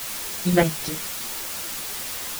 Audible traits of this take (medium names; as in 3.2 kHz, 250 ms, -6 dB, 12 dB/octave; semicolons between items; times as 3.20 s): chopped level 3.8 Hz, depth 65%, duty 35%; a quantiser's noise floor 6-bit, dither triangular; a shimmering, thickened sound